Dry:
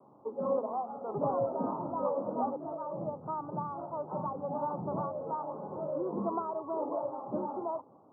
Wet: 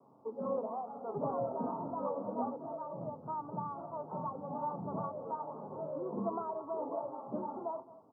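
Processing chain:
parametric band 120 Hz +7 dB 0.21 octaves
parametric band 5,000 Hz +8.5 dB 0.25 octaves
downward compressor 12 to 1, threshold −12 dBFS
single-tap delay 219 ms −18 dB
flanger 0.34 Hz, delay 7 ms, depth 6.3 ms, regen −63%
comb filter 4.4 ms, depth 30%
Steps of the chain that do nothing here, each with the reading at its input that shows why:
parametric band 5,000 Hz: nothing at its input above 1,400 Hz
downward compressor, threshold −12 dBFS: peak of its input −20.0 dBFS

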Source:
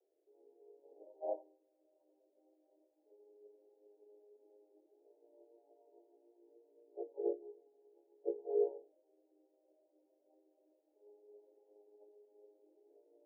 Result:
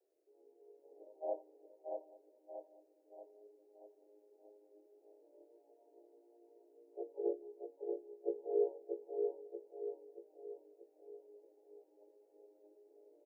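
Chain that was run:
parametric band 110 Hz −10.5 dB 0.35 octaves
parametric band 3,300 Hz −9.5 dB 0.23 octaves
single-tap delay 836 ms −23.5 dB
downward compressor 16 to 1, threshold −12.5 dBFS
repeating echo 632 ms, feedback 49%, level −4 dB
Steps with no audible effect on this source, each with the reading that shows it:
parametric band 110 Hz: nothing at its input below 300 Hz
parametric band 3,300 Hz: nothing at its input above 720 Hz
downward compressor, threshold −12.5 dBFS: peak of its input −23.0 dBFS

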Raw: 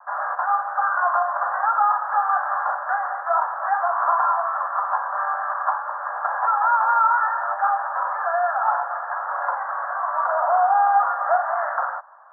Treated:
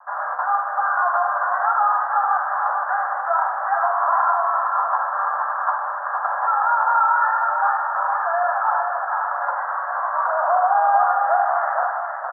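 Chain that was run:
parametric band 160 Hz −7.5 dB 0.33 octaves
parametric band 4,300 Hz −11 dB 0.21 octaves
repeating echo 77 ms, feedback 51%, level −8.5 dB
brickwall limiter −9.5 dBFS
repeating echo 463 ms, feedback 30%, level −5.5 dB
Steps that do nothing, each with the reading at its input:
parametric band 160 Hz: nothing at its input below 480 Hz
parametric band 4,300 Hz: nothing at its input above 1,900 Hz

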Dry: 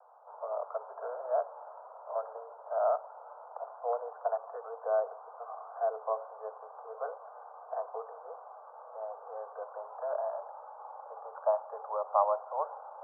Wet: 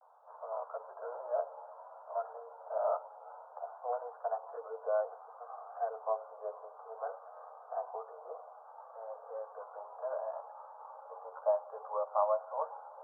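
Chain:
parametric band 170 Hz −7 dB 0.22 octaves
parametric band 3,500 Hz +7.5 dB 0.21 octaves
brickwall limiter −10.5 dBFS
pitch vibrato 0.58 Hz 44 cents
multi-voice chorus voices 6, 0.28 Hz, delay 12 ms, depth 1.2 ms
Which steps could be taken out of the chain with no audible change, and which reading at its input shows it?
parametric band 170 Hz: nothing at its input below 400 Hz
parametric band 3,500 Hz: nothing at its input above 1,500 Hz
brickwall limiter −10.5 dBFS: peak of its input −14.0 dBFS

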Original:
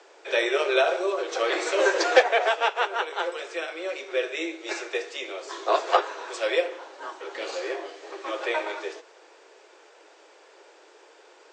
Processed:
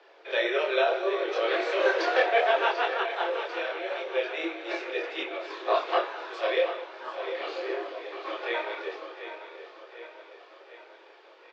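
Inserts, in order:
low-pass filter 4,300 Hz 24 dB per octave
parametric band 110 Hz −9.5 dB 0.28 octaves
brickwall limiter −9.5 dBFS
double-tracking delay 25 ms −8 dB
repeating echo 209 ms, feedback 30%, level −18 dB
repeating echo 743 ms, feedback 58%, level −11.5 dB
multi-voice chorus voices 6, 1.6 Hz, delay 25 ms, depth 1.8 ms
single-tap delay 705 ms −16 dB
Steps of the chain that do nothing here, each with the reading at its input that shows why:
parametric band 110 Hz: nothing at its input below 270 Hz

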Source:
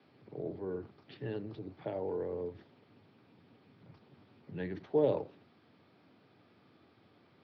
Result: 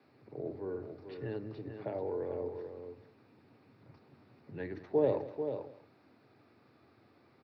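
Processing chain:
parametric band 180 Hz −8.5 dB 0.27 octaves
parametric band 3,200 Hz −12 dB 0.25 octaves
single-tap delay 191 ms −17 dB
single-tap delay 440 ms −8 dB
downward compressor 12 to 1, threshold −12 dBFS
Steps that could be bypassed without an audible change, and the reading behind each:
downward compressor, threshold −12 dBFS: peak of its input −17.5 dBFS

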